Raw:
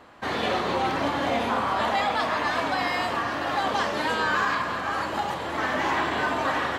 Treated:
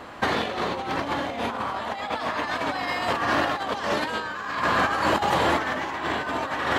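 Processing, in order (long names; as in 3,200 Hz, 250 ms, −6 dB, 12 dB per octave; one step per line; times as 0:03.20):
compressor whose output falls as the input rises −30 dBFS, ratio −0.5
level +5 dB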